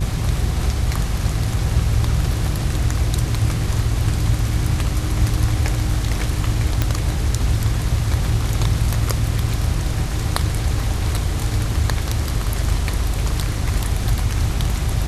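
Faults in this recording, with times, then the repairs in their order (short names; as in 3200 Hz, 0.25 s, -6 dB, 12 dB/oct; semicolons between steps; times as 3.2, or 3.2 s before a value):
hum 50 Hz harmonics 8 -24 dBFS
6.82 pop -4 dBFS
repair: de-click; de-hum 50 Hz, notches 8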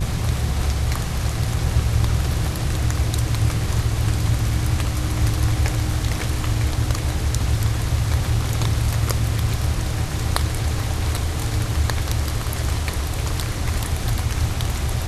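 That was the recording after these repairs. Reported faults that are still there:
none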